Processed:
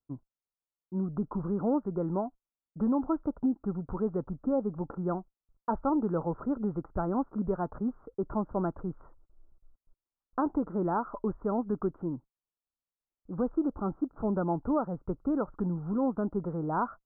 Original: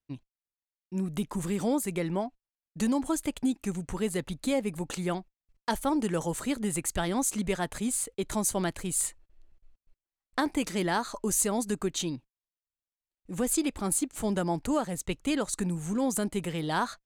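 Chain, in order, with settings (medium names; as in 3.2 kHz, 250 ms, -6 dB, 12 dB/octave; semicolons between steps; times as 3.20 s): Chebyshev low-pass 1.4 kHz, order 6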